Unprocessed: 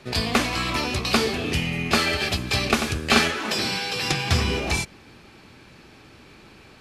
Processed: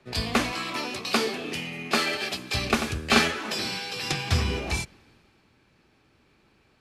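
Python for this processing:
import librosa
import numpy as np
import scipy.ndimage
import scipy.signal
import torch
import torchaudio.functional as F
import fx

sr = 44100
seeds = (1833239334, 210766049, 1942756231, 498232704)

y = fx.highpass(x, sr, hz=200.0, slope=12, at=(0.51, 2.54))
y = fx.band_widen(y, sr, depth_pct=40)
y = F.gain(torch.from_numpy(y), -4.5).numpy()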